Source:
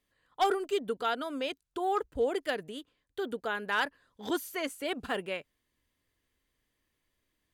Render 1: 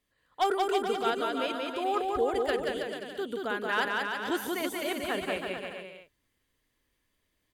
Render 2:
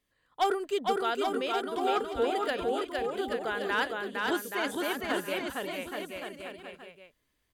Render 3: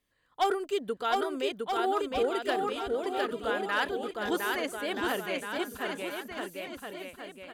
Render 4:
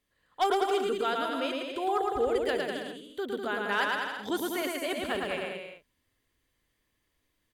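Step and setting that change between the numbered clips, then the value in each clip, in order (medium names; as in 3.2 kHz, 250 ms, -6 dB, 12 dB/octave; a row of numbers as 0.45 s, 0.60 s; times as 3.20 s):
bouncing-ball echo, first gap: 180 ms, 460 ms, 710 ms, 110 ms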